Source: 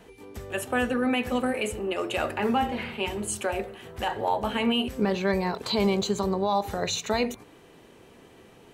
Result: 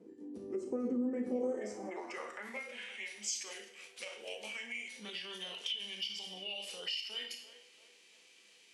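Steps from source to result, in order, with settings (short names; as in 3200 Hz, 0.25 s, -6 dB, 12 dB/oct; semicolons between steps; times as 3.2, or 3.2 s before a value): RIAA curve recording; narrowing echo 0.341 s, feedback 55%, band-pass 940 Hz, level -17.5 dB; on a send at -5 dB: reverb RT60 0.45 s, pre-delay 30 ms; on the sum: formant shift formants -5 st; band-pass sweep 320 Hz -> 2900 Hz, 1.18–2.84; compressor 3:1, threshold -38 dBFS, peak gain reduction 13.5 dB; bell 1400 Hz -10.5 dB 2 oct; small resonant body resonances 200/500 Hz, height 8 dB; gain +3 dB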